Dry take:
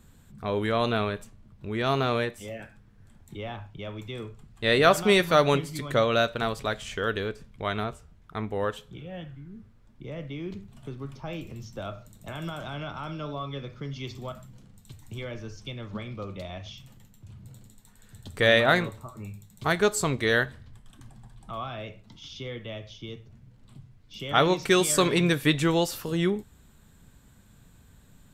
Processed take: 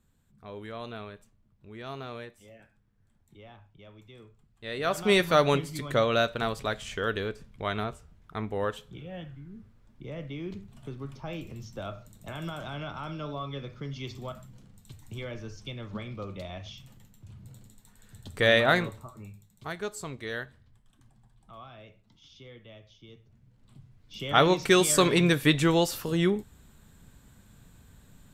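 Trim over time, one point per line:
4.73 s -14 dB
5.13 s -1.5 dB
18.94 s -1.5 dB
19.72 s -12 dB
23.05 s -12 dB
24.24 s +0.5 dB

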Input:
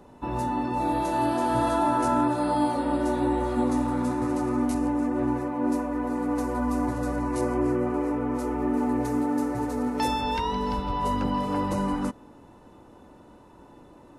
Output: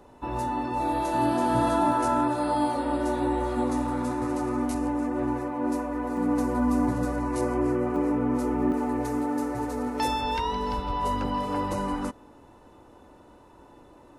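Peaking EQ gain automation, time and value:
peaking EQ 180 Hz 1.1 oct
-6.5 dB
from 1.14 s +3.5 dB
from 1.92 s -5.5 dB
from 6.17 s +6 dB
from 7.05 s -2 dB
from 7.96 s +6 dB
from 8.72 s -6 dB

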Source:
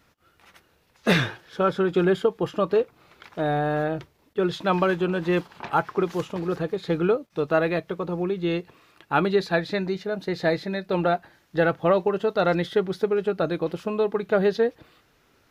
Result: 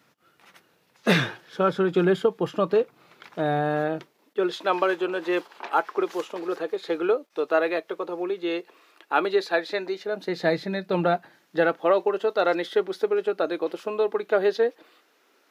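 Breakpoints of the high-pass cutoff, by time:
high-pass 24 dB/octave
3.58 s 130 Hz
4.67 s 320 Hz
9.96 s 320 Hz
10.91 s 90 Hz
11.89 s 290 Hz

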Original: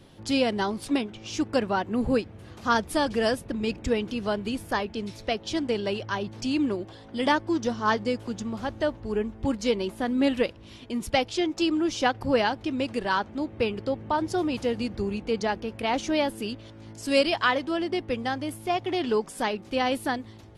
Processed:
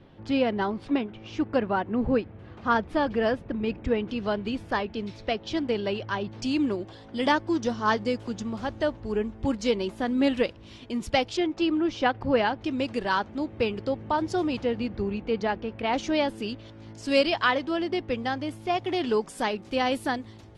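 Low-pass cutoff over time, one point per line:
2.5 kHz
from 4.09 s 4.2 kHz
from 6.42 s 7.7 kHz
from 11.37 s 3.2 kHz
from 12.62 s 7.4 kHz
from 14.57 s 3.3 kHz
from 15.93 s 6 kHz
from 18.75 s 9.7 kHz

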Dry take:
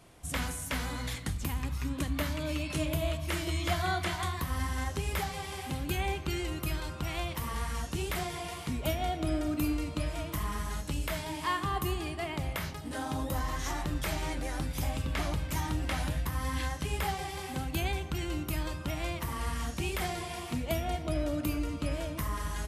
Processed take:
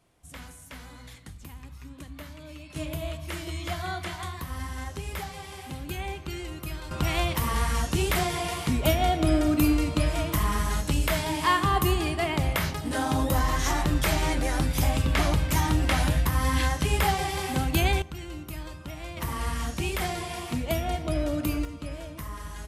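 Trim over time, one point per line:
-10 dB
from 2.76 s -2 dB
from 6.91 s +8.5 dB
from 18.02 s -4 dB
from 19.17 s +4 dB
from 21.65 s -3.5 dB

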